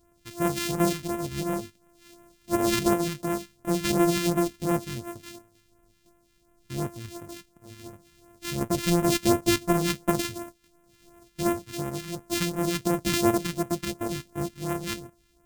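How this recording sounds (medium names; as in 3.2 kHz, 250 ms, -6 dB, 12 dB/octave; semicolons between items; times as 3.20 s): a buzz of ramps at a fixed pitch in blocks of 128 samples; phasing stages 2, 2.8 Hz, lowest notch 620–4200 Hz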